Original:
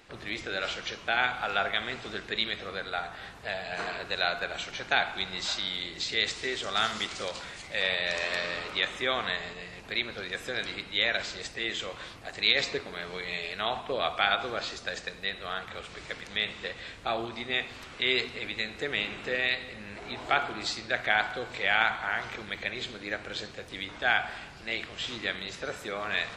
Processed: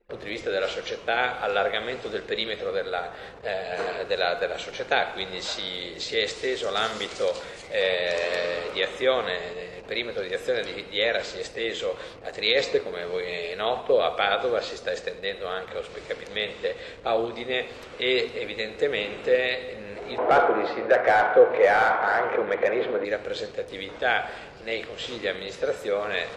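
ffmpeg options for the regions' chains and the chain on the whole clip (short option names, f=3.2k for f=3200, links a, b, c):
-filter_complex "[0:a]asettb=1/sr,asplit=3[a][b][c];[a]atrim=end=20.184[d];[b]atrim=start=20.18:end=23.05,asetpts=PTS-STARTPTS,afade=t=in:d=0.004:c=qsin,afade=t=out:st=2.866:d=0.004:c=qsin,lowpass=1.7k,asplit=2[e][f];[f]highpass=f=720:p=1,volume=22dB,asoftclip=type=tanh:threshold=-10.5dB[g];[e][g]amix=inputs=2:normalize=0,lowpass=f=1.2k:p=1,volume=-6dB,lowshelf=f=170:g=-5[h];[c]atrim=start=23.046[i];[d][h]acrossfade=d=0.004:c1=hsin:c2=qsin[j];[j][i]acrossfade=d=0.004:c1=qsin:c2=hsin,anlmdn=0.00398,equalizer=f=490:w=1.9:g=14.5"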